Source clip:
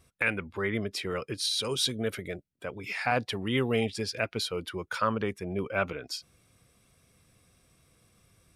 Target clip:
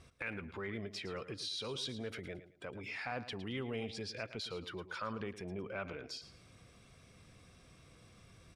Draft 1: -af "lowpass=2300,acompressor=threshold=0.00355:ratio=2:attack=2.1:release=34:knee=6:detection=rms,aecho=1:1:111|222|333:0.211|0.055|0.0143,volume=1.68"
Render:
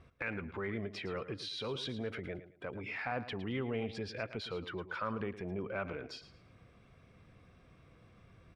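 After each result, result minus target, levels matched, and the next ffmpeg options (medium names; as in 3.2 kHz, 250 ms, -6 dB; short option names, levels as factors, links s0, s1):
8 kHz band -9.5 dB; compression: peak gain reduction -3.5 dB
-af "lowpass=6000,acompressor=threshold=0.00355:ratio=2:attack=2.1:release=34:knee=6:detection=rms,aecho=1:1:111|222|333:0.211|0.055|0.0143,volume=1.68"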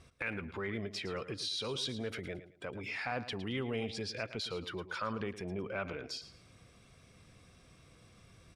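compression: peak gain reduction -3.5 dB
-af "lowpass=6000,acompressor=threshold=0.00158:ratio=2:attack=2.1:release=34:knee=6:detection=rms,aecho=1:1:111|222|333:0.211|0.055|0.0143,volume=1.68"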